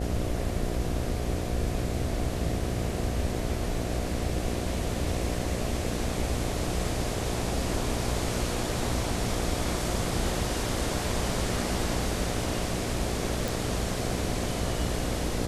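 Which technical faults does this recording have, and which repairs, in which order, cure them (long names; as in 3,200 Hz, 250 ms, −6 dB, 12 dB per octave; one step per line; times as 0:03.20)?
mains buzz 60 Hz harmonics 12 −33 dBFS
0:13.48: click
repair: click removal
hum removal 60 Hz, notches 12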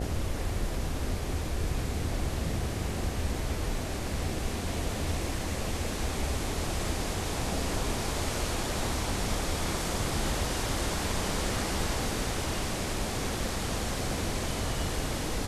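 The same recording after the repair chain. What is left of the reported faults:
none of them is left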